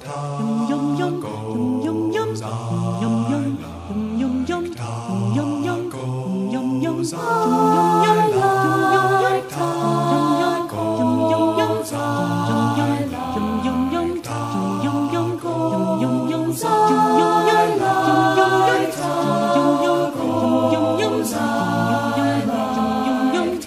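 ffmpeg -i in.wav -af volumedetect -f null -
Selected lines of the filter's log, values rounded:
mean_volume: -19.0 dB
max_volume: -3.1 dB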